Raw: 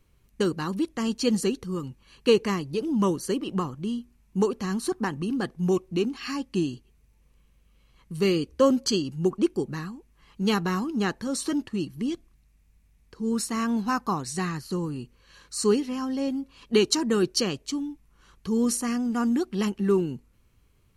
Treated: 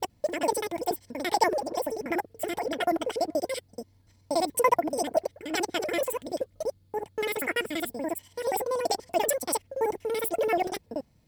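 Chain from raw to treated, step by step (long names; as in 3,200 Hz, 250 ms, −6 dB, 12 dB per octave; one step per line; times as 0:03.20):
slices reordered back to front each 89 ms, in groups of 5
notch comb filter 210 Hz
change of speed 1.86×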